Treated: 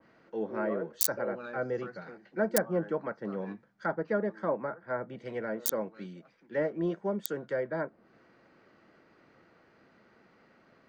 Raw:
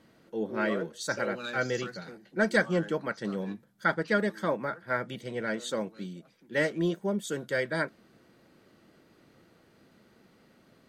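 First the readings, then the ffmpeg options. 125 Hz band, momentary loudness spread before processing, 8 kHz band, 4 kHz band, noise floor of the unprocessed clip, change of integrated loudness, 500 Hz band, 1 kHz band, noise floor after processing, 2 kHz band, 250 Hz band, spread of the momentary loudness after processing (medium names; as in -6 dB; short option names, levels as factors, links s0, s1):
-4.5 dB, 12 LU, +5.5 dB, -6.5 dB, -63 dBFS, -2.5 dB, -1.0 dB, -3.5 dB, -64 dBFS, -9.5 dB, -3.5 dB, 12 LU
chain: -filter_complex "[0:a]lowshelf=f=460:g=-10.5,acrossover=split=140|990|2800[s0][s1][s2][s3];[s2]acompressor=threshold=0.00316:ratio=6[s4];[s3]acrusher=bits=4:mix=0:aa=0.000001[s5];[s0][s1][s4][s5]amix=inputs=4:normalize=0,aexciter=amount=7.8:drive=5.2:freq=5000,asoftclip=type=tanh:threshold=0.266,adynamicequalizer=threshold=0.002:dfrequency=2000:dqfactor=0.7:tfrequency=2000:tqfactor=0.7:attack=5:release=100:ratio=0.375:range=3:mode=cutabove:tftype=highshelf,volume=1.68"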